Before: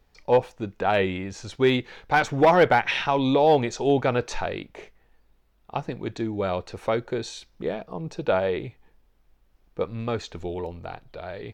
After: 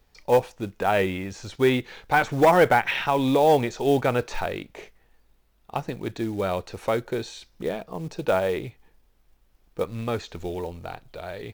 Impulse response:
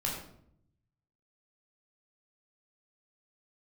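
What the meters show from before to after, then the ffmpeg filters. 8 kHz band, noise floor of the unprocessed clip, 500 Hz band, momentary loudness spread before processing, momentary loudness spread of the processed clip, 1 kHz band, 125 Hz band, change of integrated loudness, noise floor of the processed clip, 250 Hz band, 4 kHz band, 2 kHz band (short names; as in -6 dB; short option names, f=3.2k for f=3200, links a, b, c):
+0.5 dB, -63 dBFS, 0.0 dB, 17 LU, 17 LU, +0.5 dB, 0.0 dB, 0.0 dB, -63 dBFS, 0.0 dB, -1.5 dB, +0.5 dB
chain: -filter_complex "[0:a]highshelf=f=3.7k:g=5.5,acrossover=split=3000[a][b];[b]acompressor=threshold=-41dB:ratio=4:attack=1:release=60[c];[a][c]amix=inputs=2:normalize=0,acrusher=bits=6:mode=log:mix=0:aa=0.000001"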